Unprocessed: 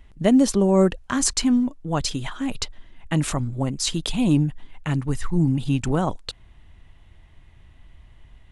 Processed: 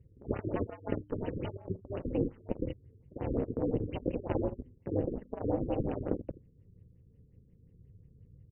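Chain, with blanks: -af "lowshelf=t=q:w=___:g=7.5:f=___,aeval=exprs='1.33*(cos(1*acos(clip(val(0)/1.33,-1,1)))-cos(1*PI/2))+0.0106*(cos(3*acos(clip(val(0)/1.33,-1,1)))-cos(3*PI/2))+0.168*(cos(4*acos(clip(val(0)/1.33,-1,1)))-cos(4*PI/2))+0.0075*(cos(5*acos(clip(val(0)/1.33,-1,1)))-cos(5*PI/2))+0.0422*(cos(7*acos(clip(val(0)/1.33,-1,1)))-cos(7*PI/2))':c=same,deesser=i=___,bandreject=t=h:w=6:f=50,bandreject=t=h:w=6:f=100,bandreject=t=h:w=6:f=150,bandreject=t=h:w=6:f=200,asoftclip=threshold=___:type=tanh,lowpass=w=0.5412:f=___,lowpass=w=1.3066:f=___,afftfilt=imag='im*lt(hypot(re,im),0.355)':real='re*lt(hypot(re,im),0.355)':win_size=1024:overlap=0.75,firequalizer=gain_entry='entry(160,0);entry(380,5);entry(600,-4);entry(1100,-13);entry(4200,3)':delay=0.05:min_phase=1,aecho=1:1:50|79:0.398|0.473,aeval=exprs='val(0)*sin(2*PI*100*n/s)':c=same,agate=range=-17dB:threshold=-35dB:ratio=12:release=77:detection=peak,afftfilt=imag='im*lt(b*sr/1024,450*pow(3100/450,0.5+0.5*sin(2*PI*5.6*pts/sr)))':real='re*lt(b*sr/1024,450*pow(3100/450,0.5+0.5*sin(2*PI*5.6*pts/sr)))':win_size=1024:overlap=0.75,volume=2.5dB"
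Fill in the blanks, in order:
3, 510, 0.35, -14dB, 9.9k, 9.9k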